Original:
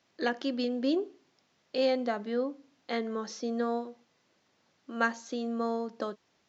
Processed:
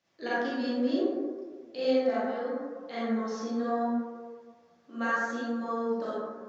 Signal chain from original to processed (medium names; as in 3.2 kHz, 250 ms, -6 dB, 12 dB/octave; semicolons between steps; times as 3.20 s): 2.03–2.45 s: high-pass 170 Hz -> 460 Hz; reverberation RT60 1.6 s, pre-delay 27 ms, DRR -9.5 dB; flange 0.71 Hz, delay 5.2 ms, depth 8.7 ms, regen +53%; trim -5 dB